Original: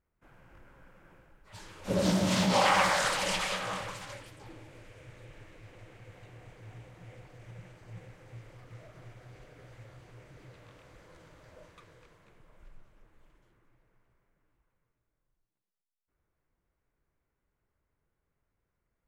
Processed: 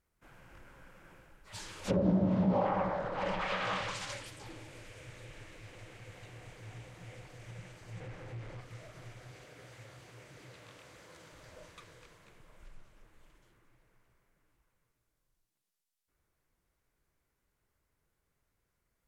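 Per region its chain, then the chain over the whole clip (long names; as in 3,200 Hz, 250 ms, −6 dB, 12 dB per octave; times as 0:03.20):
0:08.00–0:08.61: low-pass filter 1,800 Hz 6 dB per octave + leveller curve on the samples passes 2
0:09.31–0:11.33: high-pass filter 49 Hz + low-shelf EQ 79 Hz −9.5 dB
whole clip: treble cut that deepens with the level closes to 570 Hz, closed at −25 dBFS; high-shelf EQ 2,500 Hz +8.5 dB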